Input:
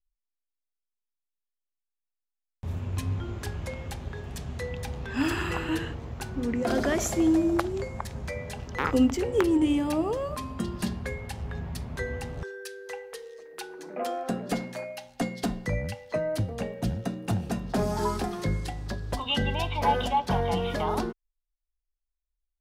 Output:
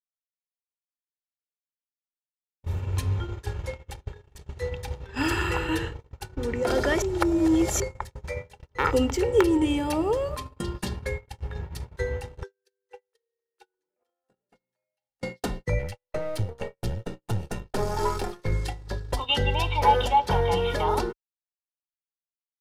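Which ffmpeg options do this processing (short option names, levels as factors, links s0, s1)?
-filter_complex "[0:a]asettb=1/sr,asplit=3[s0][s1][s2];[s0]atrim=end=13.834[s3];[s1]atrim=start=13.83:end=15.23,asetpts=PTS-STARTPTS,afade=t=in:d=0.004:c=qsin,afade=t=out:st=1.396:d=0.004:c=qsin,acompressor=threshold=0.01:ratio=2.5:attack=3.2:release=140:knee=1:detection=peak[s4];[s2]atrim=start=15.226[s5];[s3][s4]acrossfade=d=0.004:c1=hsin:c2=qsin[s6];[s6][s5]acrossfade=d=0.004:c1=qsin:c2=hsin,asettb=1/sr,asplit=3[s7][s8][s9];[s7]atrim=end=15.794[s10];[s8]atrim=start=15.79:end=18.52,asetpts=PTS-STARTPTS,afade=t=in:d=0.004:c=qsin,afade=t=out:st=2.726:d=0.004:c=qsin,aeval=exprs='if(lt(val(0),0),0.447*val(0),val(0))':c=same[s11];[s9]atrim=start=18.516[s12];[s10][s11]acrossfade=d=0.004:c1=hsin:c2=qsin[s13];[s13][s12]acrossfade=d=0.004:c1=qsin:c2=hsin,asplit=3[s14][s15][s16];[s14]atrim=end=7.022[s17];[s15]atrim=start=7.018:end=7.802,asetpts=PTS-STARTPTS,areverse[s18];[s16]atrim=start=7.798[s19];[s17][s18]acrossfade=d=0.004:c1=hsin:c2=hsin[s20];[s20][s19]acrossfade=d=0.004:c1=hsin:c2=hsin,agate=range=0.00447:threshold=0.0224:ratio=16:detection=peak,equalizer=f=220:w=1.2:g=-3,aecho=1:1:2.2:0.49,volume=1.33"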